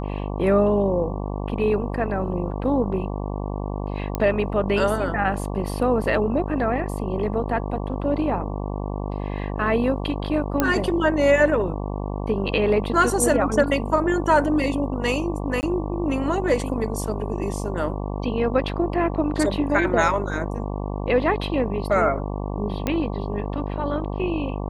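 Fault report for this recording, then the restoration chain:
mains buzz 50 Hz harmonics 23 −28 dBFS
0:04.15: click −11 dBFS
0:10.60: click −5 dBFS
0:15.61–0:15.63: drop-out 19 ms
0:22.87: click −10 dBFS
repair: click removal
hum removal 50 Hz, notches 23
repair the gap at 0:15.61, 19 ms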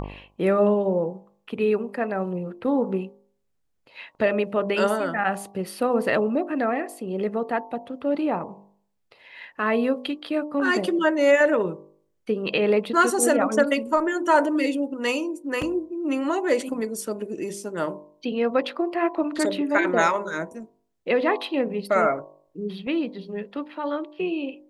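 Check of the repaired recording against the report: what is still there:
none of them is left

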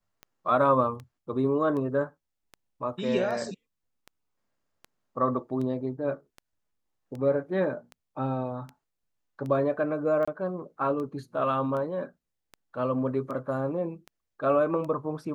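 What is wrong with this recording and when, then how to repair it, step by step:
scratch tick 78 rpm −27 dBFS
0:10.25–0:10.28: drop-out 25 ms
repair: click removal
repair the gap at 0:10.25, 25 ms

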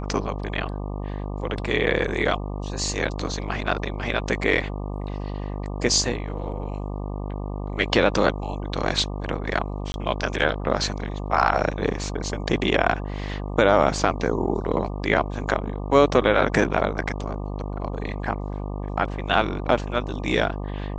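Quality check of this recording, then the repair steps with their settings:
mains buzz 50 Hz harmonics 24 −30 dBFS
0:09.92–0:09.94: drop-out 21 ms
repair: hum removal 50 Hz, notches 24
repair the gap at 0:09.92, 21 ms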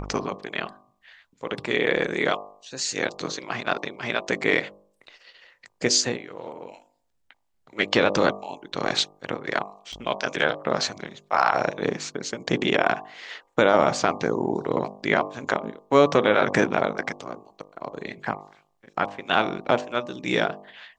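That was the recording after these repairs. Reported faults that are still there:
none of them is left

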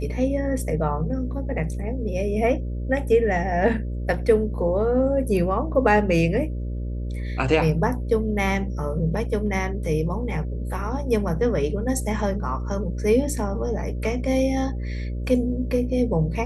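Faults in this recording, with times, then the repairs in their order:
mains buzz 60 Hz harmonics 10 −28 dBFS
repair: hum removal 60 Hz, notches 10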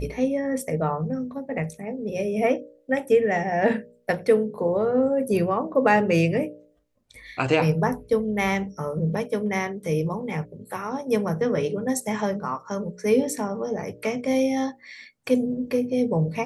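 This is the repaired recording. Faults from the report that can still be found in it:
none of them is left

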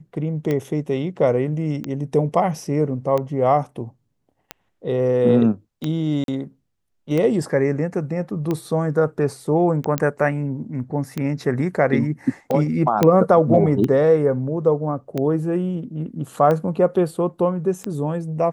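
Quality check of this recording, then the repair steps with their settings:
scratch tick 45 rpm −12 dBFS
0:06.24–0:06.28: drop-out 42 ms
0:09.98: click −7 dBFS
0:13.03: click −3 dBFS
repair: click removal
repair the gap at 0:06.24, 42 ms

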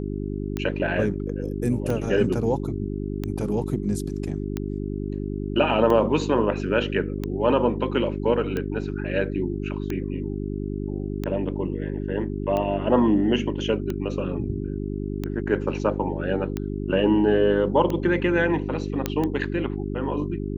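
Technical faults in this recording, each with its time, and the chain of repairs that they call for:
mains hum 50 Hz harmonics 8 −29 dBFS
scratch tick 45 rpm −15 dBFS
0:19.06: click −9 dBFS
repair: click removal
hum removal 50 Hz, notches 8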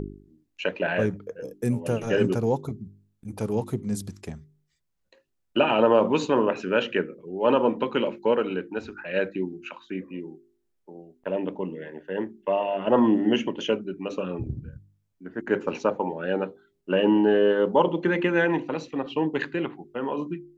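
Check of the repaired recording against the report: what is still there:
none of them is left

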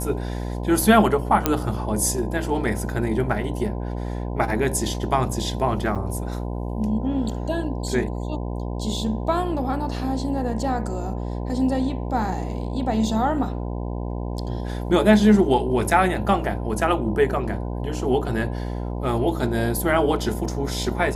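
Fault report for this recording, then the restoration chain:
mains buzz 60 Hz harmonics 17 −28 dBFS
0:01.46: click −3 dBFS
0:05.95–0:05.96: drop-out 7 ms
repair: click removal
hum removal 60 Hz, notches 17
repair the gap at 0:05.95, 7 ms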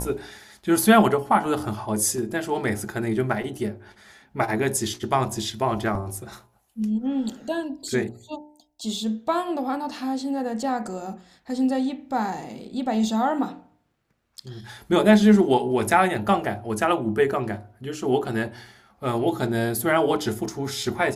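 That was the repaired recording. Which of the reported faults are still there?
none of them is left

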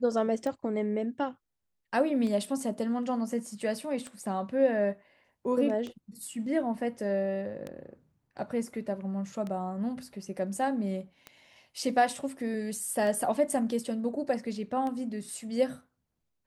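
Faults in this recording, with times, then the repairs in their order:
scratch tick 33 1/3 rpm −24 dBFS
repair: click removal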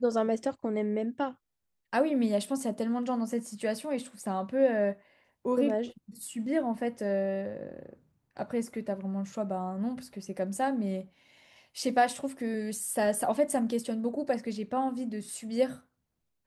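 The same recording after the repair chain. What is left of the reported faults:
none of them is left

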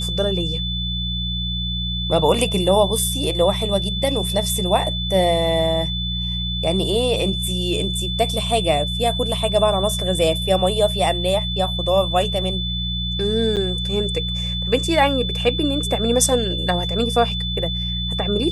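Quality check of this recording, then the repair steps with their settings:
mains hum 60 Hz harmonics 3 −26 dBFS
whistle 3,500 Hz −25 dBFS
0:13.56–0:13.57: drop-out 8 ms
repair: hum removal 60 Hz, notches 3
notch filter 3,500 Hz, Q 30
repair the gap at 0:13.56, 8 ms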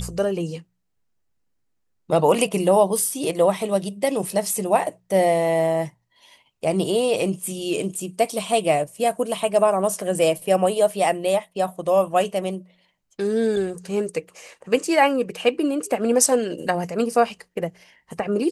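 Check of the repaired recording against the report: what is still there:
none of them is left

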